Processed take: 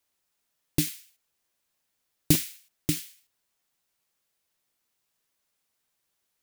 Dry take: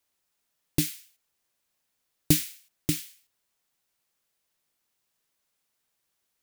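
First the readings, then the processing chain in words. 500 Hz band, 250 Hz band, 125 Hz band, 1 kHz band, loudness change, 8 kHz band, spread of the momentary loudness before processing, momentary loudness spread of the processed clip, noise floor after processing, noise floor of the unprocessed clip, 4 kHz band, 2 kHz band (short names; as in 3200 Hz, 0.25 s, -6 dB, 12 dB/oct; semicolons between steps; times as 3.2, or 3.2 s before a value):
+0.5 dB, 0.0 dB, 0.0 dB, +1.0 dB, 0.0 dB, 0.0 dB, 17 LU, 17 LU, -79 dBFS, -79 dBFS, 0.0 dB, 0.0 dB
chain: crackling interface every 0.21 s, samples 512, repeat, from 0.65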